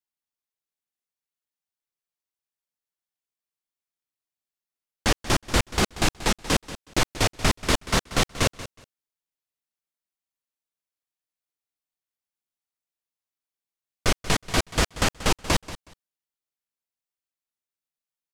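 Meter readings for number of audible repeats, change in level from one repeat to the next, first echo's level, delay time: 2, -14.5 dB, -15.5 dB, 184 ms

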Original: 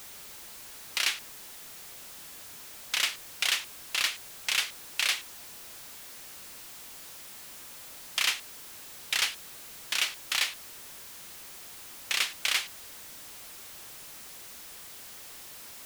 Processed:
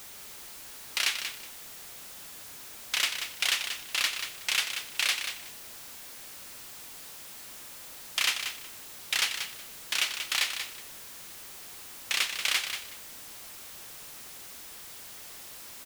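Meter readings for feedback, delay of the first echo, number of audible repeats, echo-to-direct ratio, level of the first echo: 19%, 185 ms, 2, -8.0 dB, -8.0 dB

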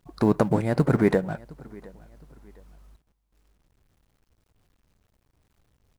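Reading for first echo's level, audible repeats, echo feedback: -23.5 dB, 2, 34%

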